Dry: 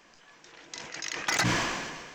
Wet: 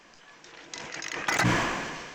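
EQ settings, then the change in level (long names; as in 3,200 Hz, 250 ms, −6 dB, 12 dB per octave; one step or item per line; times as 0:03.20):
high-shelf EQ 9,600 Hz −4 dB
dynamic equaliser 4,800 Hz, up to −7 dB, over −44 dBFS, Q 0.84
+3.5 dB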